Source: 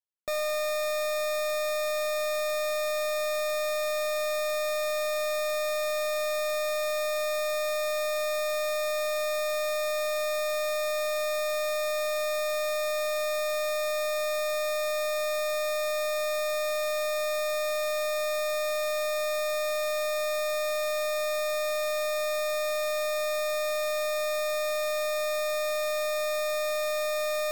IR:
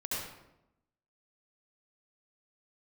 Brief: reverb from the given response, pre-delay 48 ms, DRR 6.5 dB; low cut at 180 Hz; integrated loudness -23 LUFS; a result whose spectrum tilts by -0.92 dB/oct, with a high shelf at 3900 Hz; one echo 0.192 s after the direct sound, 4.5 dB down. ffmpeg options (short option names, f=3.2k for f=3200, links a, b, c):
-filter_complex "[0:a]highpass=180,highshelf=f=3.9k:g=5,aecho=1:1:192:0.596,asplit=2[a][b];[1:a]atrim=start_sample=2205,adelay=48[c];[b][c]afir=irnorm=-1:irlink=0,volume=-10.5dB[d];[a][d]amix=inputs=2:normalize=0,volume=-2.5dB"